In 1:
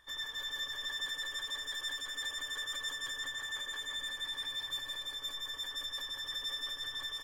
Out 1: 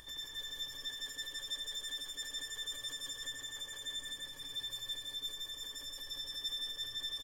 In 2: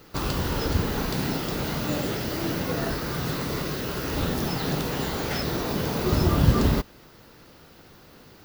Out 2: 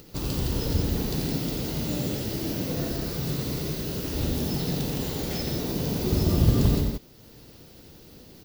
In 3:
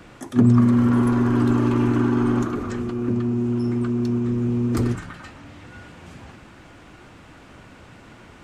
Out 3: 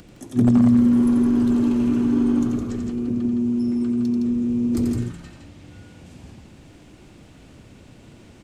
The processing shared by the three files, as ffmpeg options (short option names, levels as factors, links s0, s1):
-af "equalizer=f=1300:t=o:w=1.9:g=-13,acompressor=mode=upward:threshold=0.00708:ratio=2.5,aecho=1:1:87.46|163.3:0.501|0.562,aeval=exprs='0.398*(abs(mod(val(0)/0.398+3,4)-2)-1)':c=same,volume=0.891"